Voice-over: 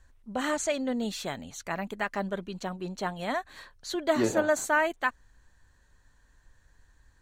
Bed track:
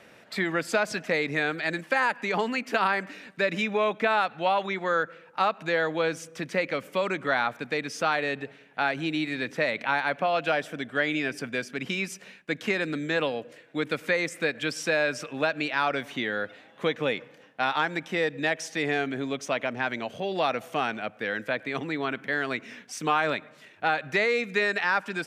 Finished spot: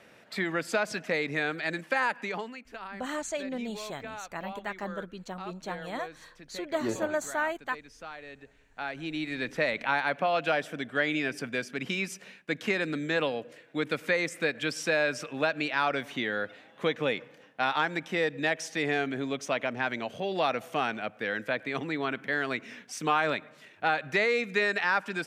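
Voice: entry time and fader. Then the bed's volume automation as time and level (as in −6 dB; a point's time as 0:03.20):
2.65 s, −5.0 dB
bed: 0:02.21 −3 dB
0:02.64 −17.5 dB
0:08.24 −17.5 dB
0:09.47 −1.5 dB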